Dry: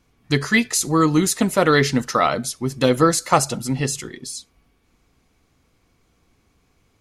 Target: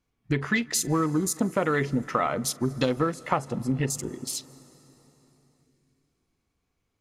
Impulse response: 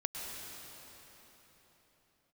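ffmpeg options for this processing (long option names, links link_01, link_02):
-filter_complex "[0:a]acompressor=threshold=-23dB:ratio=5,afwtdn=0.0158,asplit=2[link_01][link_02];[1:a]atrim=start_sample=2205,adelay=43[link_03];[link_02][link_03]afir=irnorm=-1:irlink=0,volume=-21dB[link_04];[link_01][link_04]amix=inputs=2:normalize=0,volume=1dB"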